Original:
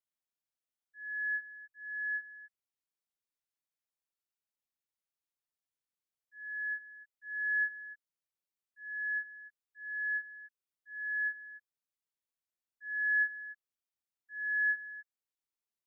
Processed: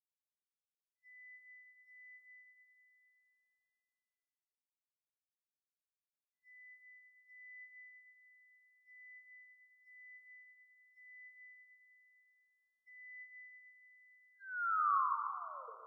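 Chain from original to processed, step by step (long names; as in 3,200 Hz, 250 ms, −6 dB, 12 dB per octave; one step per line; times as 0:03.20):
turntable brake at the end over 1.91 s
mains-hum notches 50/100/150/200 Hz
noise gate −43 dBFS, range −35 dB
drawn EQ curve 1,100 Hz 0 dB, 1,500 Hz −28 dB, 2,300 Hz −12 dB
in parallel at +1.5 dB: downward compressor, threshold −40 dBFS, peak gain reduction 12 dB
on the sum: bass and treble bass +9 dB, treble +4 dB
frequency shifter +300 Hz
delay that swaps between a low-pass and a high-pass 115 ms, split 1,600 Hz, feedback 71%, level −9 dB
comb and all-pass reverb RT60 1.8 s, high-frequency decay 0.6×, pre-delay 55 ms, DRR 4.5 dB
one half of a high-frequency compander encoder only
level −7.5 dB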